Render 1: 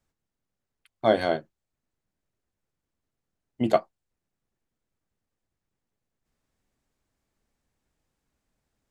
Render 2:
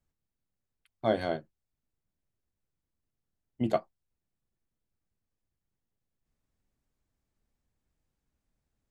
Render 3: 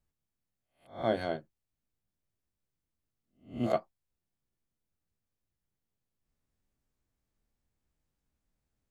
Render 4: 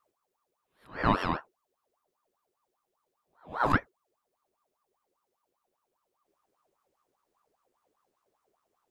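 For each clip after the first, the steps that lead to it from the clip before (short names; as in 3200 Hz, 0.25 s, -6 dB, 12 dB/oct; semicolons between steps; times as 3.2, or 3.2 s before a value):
low shelf 200 Hz +8 dB; gain -7.5 dB
spectral swells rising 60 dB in 0.36 s; gain -3 dB
ring modulator with a swept carrier 790 Hz, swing 55%, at 5 Hz; gain +7 dB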